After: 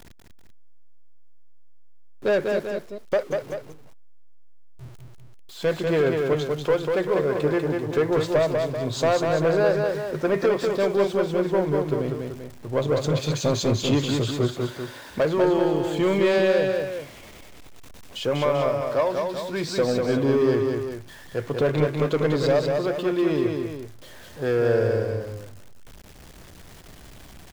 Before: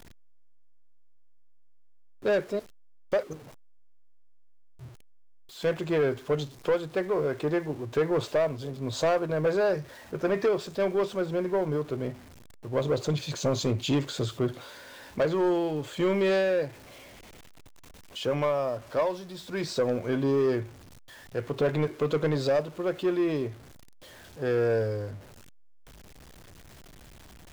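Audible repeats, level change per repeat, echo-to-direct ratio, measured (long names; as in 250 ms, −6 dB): 2, −5.5 dB, −3.0 dB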